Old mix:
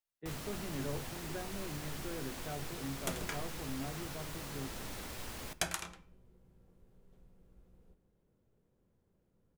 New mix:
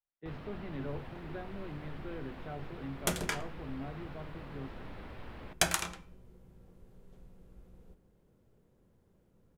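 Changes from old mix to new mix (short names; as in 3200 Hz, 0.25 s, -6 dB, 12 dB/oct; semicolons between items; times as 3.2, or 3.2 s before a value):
first sound: add air absorption 440 m; second sound +7.0 dB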